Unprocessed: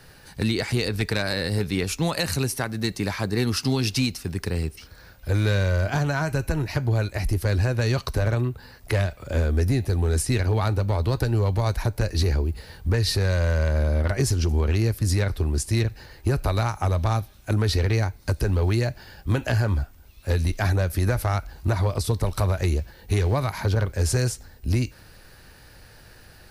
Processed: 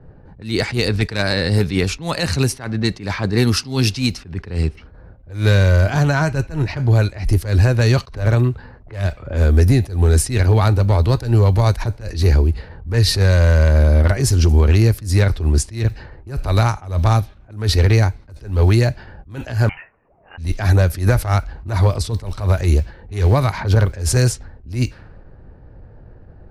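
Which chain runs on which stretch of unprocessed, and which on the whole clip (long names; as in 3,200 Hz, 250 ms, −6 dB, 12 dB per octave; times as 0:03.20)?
0:19.69–0:20.38: high-pass filter 460 Hz 24 dB per octave + tilt shelving filter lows −6.5 dB + voice inversion scrambler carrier 3,300 Hz
whole clip: low-pass that shuts in the quiet parts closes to 540 Hz, open at −19 dBFS; low-shelf EQ 150 Hz +3.5 dB; level that may rise only so fast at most 140 dB per second; level +7 dB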